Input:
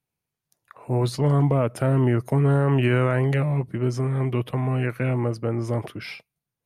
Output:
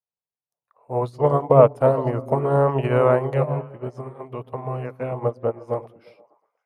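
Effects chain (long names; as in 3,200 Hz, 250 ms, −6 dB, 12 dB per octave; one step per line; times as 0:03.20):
flat-topped bell 720 Hz +12.5 dB
echo through a band-pass that steps 117 ms, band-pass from 160 Hz, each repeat 0.7 octaves, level −2 dB
expander for the loud parts 2.5 to 1, over −26 dBFS
level +1.5 dB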